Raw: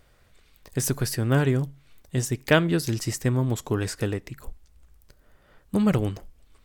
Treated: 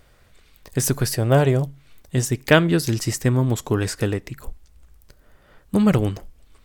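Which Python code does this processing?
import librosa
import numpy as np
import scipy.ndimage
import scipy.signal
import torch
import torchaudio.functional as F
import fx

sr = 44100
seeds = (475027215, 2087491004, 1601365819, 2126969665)

y = fx.graphic_eq_15(x, sr, hz=(250, 630, 1600), db=(-5, 9, -4), at=(1.14, 1.67))
y = y * librosa.db_to_amplitude(4.5)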